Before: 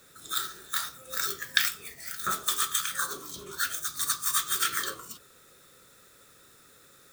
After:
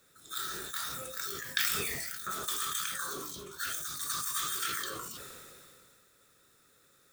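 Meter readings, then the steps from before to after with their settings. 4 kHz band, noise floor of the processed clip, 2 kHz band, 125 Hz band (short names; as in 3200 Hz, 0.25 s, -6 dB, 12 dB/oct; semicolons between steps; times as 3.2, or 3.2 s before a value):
-5.0 dB, -65 dBFS, -5.0 dB, +1.5 dB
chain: sustainer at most 23 dB/s; gain -8.5 dB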